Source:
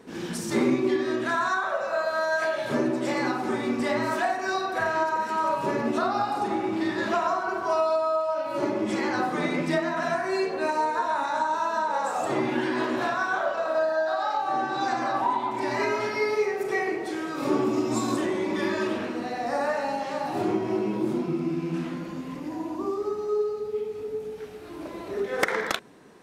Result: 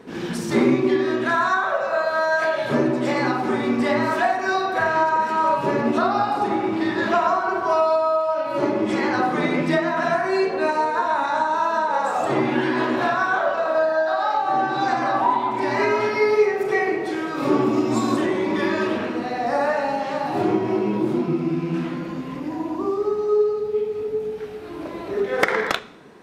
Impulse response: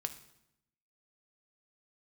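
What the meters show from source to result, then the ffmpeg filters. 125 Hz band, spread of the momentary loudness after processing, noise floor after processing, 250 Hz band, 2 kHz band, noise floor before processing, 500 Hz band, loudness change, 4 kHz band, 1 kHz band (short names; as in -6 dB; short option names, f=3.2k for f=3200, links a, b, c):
+6.0 dB, 6 LU, -32 dBFS, +5.0 dB, +5.5 dB, -37 dBFS, +5.5 dB, +5.5 dB, +3.5 dB, +5.5 dB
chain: -filter_complex "[0:a]asplit=2[a][b];[b]lowpass=5.2k[c];[1:a]atrim=start_sample=2205[d];[c][d]afir=irnorm=-1:irlink=0,volume=0dB[e];[a][e]amix=inputs=2:normalize=0"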